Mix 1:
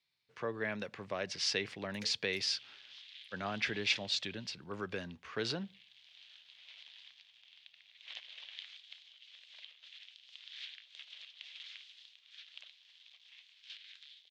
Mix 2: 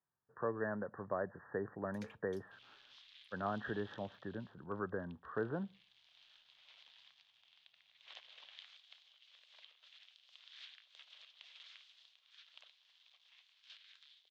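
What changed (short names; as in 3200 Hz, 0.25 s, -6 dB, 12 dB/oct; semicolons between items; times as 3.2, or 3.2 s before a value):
speech: add brick-wall FIR low-pass 1900 Hz; master: add resonant high shelf 1600 Hz -6.5 dB, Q 1.5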